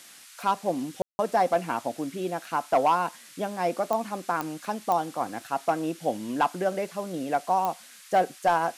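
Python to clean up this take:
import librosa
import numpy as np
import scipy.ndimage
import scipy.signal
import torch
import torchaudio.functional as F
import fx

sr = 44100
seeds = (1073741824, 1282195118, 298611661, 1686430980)

y = fx.fix_declip(x, sr, threshold_db=-14.5)
y = fx.fix_declick_ar(y, sr, threshold=10.0)
y = fx.fix_ambience(y, sr, seeds[0], print_start_s=0.0, print_end_s=0.5, start_s=1.02, end_s=1.19)
y = fx.noise_reduce(y, sr, print_start_s=0.0, print_end_s=0.5, reduce_db=22.0)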